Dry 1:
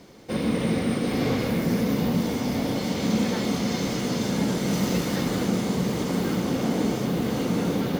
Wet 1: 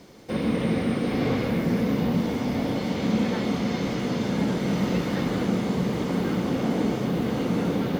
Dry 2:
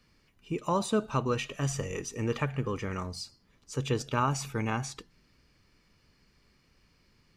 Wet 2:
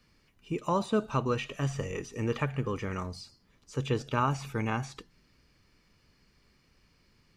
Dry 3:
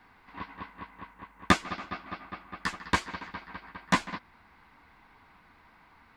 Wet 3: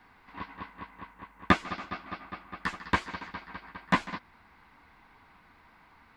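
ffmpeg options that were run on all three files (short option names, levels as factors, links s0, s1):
-filter_complex "[0:a]acrossover=split=3800[s0][s1];[s1]acompressor=threshold=0.00355:ratio=4:attack=1:release=60[s2];[s0][s2]amix=inputs=2:normalize=0"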